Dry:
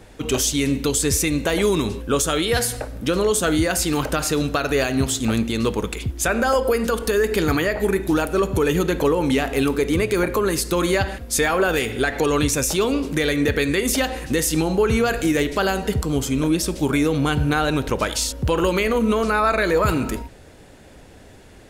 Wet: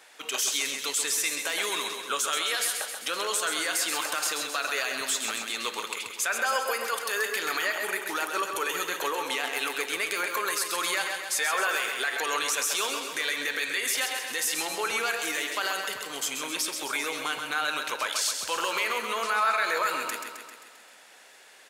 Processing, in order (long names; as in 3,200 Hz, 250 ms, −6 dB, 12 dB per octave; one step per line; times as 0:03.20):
high-pass filter 1,100 Hz 12 dB per octave
brickwall limiter −17.5 dBFS, peak gain reduction 9 dB
on a send: repeating echo 132 ms, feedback 59%, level −6.5 dB